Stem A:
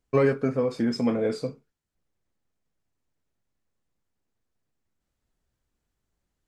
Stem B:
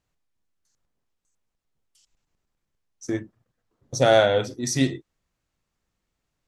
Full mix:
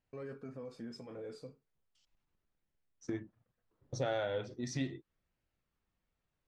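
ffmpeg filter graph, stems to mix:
-filter_complex "[0:a]bandreject=f=2100:w=12,alimiter=limit=0.0891:level=0:latency=1:release=71,volume=0.251[s0];[1:a]lowpass=3700,volume=0.794[s1];[s0][s1]amix=inputs=2:normalize=0,flanger=delay=0.4:depth=1.9:regen=-75:speed=0.37:shape=sinusoidal,acompressor=threshold=0.0141:ratio=2.5"

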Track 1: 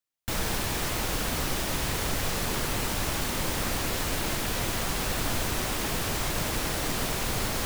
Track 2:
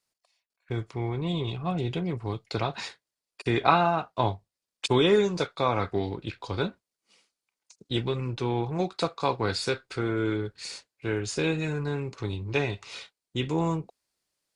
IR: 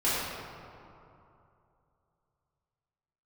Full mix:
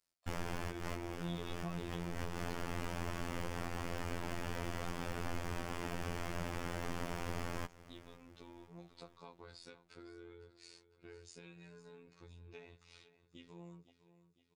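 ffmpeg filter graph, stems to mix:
-filter_complex "[0:a]aemphasis=mode=reproduction:type=75kf,equalizer=f=3900:t=o:w=0.23:g=-10.5,volume=0.794,asplit=2[s0][s1];[s1]volume=0.0708[s2];[1:a]acompressor=threshold=0.0224:ratio=3,volume=0.631,afade=t=out:st=1.92:d=0.68:silence=0.237137,asplit=3[s3][s4][s5];[s4]volume=0.178[s6];[s5]apad=whole_len=337589[s7];[s0][s7]sidechaincompress=threshold=0.00631:ratio=10:attack=8:release=106[s8];[s2][s6]amix=inputs=2:normalize=0,aecho=0:1:506|1012|1518|2024|2530|3036|3542|4048:1|0.52|0.27|0.141|0.0731|0.038|0.0198|0.0103[s9];[s8][s3][s9]amix=inputs=3:normalize=0,afftfilt=real='hypot(re,im)*cos(PI*b)':imag='0':win_size=2048:overlap=0.75,acompressor=threshold=0.0158:ratio=2"

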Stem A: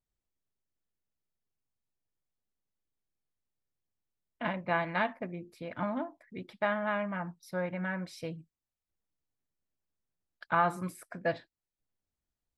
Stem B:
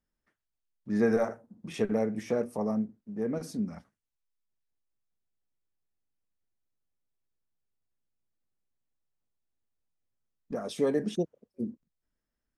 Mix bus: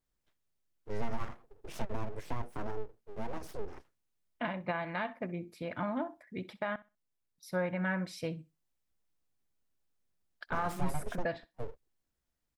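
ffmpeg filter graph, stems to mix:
-filter_complex "[0:a]alimiter=level_in=1.26:limit=0.0631:level=0:latency=1:release=312,volume=0.794,volume=1.26,asplit=3[s0][s1][s2];[s0]atrim=end=6.76,asetpts=PTS-STARTPTS,afade=t=out:st=6.756:d=0.004:c=hsin[s3];[s1]atrim=start=6.76:end=7.38,asetpts=PTS-STARTPTS,volume=0[s4];[s2]atrim=start=7.38,asetpts=PTS-STARTPTS,afade=t=in:d=0.004:c=hsin[s5];[s3][s4][s5]concat=n=3:v=0:a=1,asplit=2[s6][s7];[s7]volume=0.106[s8];[1:a]aeval=exprs='abs(val(0))':c=same,acrossover=split=130[s9][s10];[s10]acompressor=threshold=0.0178:ratio=6[s11];[s9][s11]amix=inputs=2:normalize=0,adynamicequalizer=threshold=0.00178:dfrequency=2800:dqfactor=0.7:tfrequency=2800:tqfactor=0.7:attack=5:release=100:ratio=0.375:range=2.5:mode=cutabove:tftype=highshelf,volume=0.794[s12];[s8]aecho=0:1:64|128|192:1|0.18|0.0324[s13];[s6][s12][s13]amix=inputs=3:normalize=0"

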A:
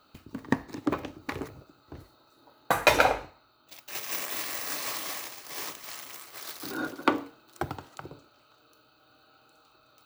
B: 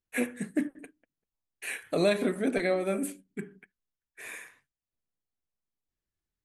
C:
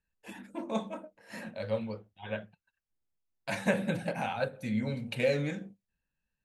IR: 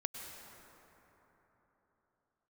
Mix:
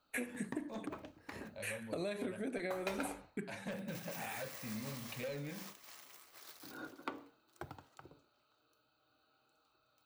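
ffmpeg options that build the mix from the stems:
-filter_complex "[0:a]flanger=delay=1.2:depth=3.9:regen=-72:speed=0.9:shape=sinusoidal,volume=0.316[s0];[1:a]agate=range=0.0224:threshold=0.00398:ratio=3:detection=peak,acompressor=threshold=0.0282:ratio=6,volume=1.12[s1];[2:a]asoftclip=type=tanh:threshold=0.0562,volume=0.355,asplit=2[s2][s3];[s3]apad=whole_len=284037[s4];[s1][s4]sidechaincompress=threshold=0.00562:ratio=8:attack=16:release=306[s5];[s0][s5][s2]amix=inputs=3:normalize=0,acompressor=threshold=0.00891:ratio=2"

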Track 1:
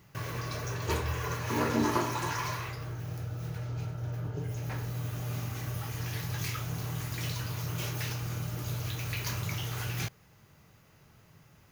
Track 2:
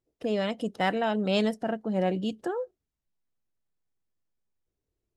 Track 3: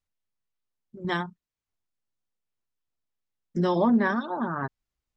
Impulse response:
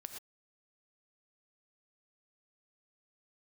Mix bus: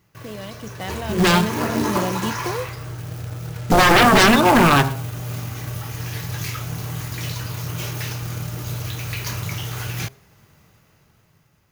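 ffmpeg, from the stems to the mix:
-filter_complex "[0:a]volume=0.631,asplit=2[s0][s1];[s1]volume=0.0944[s2];[1:a]acrossover=split=130|3000[s3][s4][s5];[s4]acompressor=threshold=0.0158:ratio=2[s6];[s3][s6][s5]amix=inputs=3:normalize=0,volume=0.794[s7];[2:a]aeval=exprs='0.266*sin(PI/2*5.62*val(0)/0.266)':c=same,bandreject=f=113.4:t=h:w=4,bandreject=f=226.8:t=h:w=4,bandreject=f=340.2:t=h:w=4,bandreject=f=453.6:t=h:w=4,bandreject=f=567:t=h:w=4,bandreject=f=680.4:t=h:w=4,bandreject=f=793.8:t=h:w=4,bandreject=f=907.2:t=h:w=4,bandreject=f=1020.6:t=h:w=4,bandreject=f=1134:t=h:w=4,bandreject=f=1247.4:t=h:w=4,bandreject=f=1360.8:t=h:w=4,bandreject=f=1474.2:t=h:w=4,bandreject=f=1587.6:t=h:w=4,bandreject=f=1701:t=h:w=4,bandreject=f=1814.4:t=h:w=4,bandreject=f=1927.8:t=h:w=4,bandreject=f=2041.2:t=h:w=4,bandreject=f=2154.6:t=h:w=4,bandreject=f=2268:t=h:w=4,bandreject=f=2381.4:t=h:w=4,bandreject=f=2494.8:t=h:w=4,bandreject=f=2608.2:t=h:w=4,bandreject=f=2721.6:t=h:w=4,bandreject=f=2835:t=h:w=4,bandreject=f=2948.4:t=h:w=4,bandreject=f=3061.8:t=h:w=4,bandreject=f=3175.2:t=h:w=4,bandreject=f=3288.6:t=h:w=4,adelay=150,volume=0.355,asplit=2[s8][s9];[s9]volume=0.422[s10];[3:a]atrim=start_sample=2205[s11];[s2][s10]amix=inputs=2:normalize=0[s12];[s12][s11]afir=irnorm=-1:irlink=0[s13];[s0][s7][s8][s13]amix=inputs=4:normalize=0,bandreject=f=134.9:t=h:w=4,bandreject=f=269.8:t=h:w=4,bandreject=f=404.7:t=h:w=4,bandreject=f=539.6:t=h:w=4,bandreject=f=674.5:t=h:w=4,bandreject=f=809.4:t=h:w=4,bandreject=f=944.3:t=h:w=4,bandreject=f=1079.2:t=h:w=4,dynaudnorm=f=270:g=9:m=3.16,acrusher=bits=3:mode=log:mix=0:aa=0.000001"

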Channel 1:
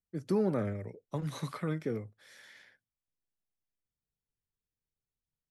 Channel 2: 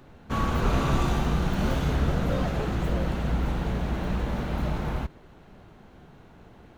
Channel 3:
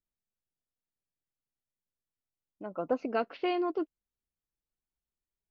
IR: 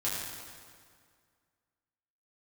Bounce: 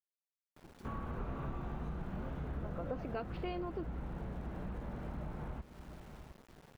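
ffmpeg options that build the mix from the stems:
-filter_complex "[0:a]acompressor=threshold=0.01:ratio=6,adelay=500,volume=0.158[s0];[1:a]highshelf=f=3300:g=-10.5,acrossover=split=2600[s1][s2];[s2]acompressor=threshold=0.00112:ratio=4:attack=1:release=60[s3];[s1][s3]amix=inputs=2:normalize=0,adelay=550,volume=0.473,asplit=2[s4][s5];[s5]volume=0.141[s6];[2:a]volume=1.12[s7];[s6]aecho=0:1:706:1[s8];[s0][s4][s7][s8]amix=inputs=4:normalize=0,aeval=exprs='val(0)*gte(abs(val(0)),0.002)':c=same,acompressor=threshold=0.00794:ratio=2.5"

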